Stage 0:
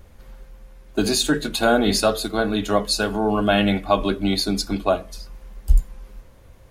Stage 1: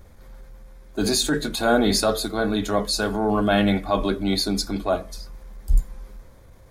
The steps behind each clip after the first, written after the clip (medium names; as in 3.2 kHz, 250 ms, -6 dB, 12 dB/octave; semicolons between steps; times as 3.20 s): peaking EQ 2.8 kHz -10 dB 0.24 oct; transient shaper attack -6 dB, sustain +1 dB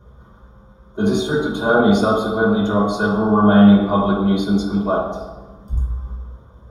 reverberation RT60 1.2 s, pre-delay 3 ms, DRR -6 dB; trim -15 dB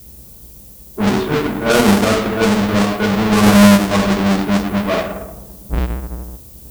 square wave that keeps the level; level-controlled noise filter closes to 560 Hz, open at -7 dBFS; added noise violet -39 dBFS; trim -2 dB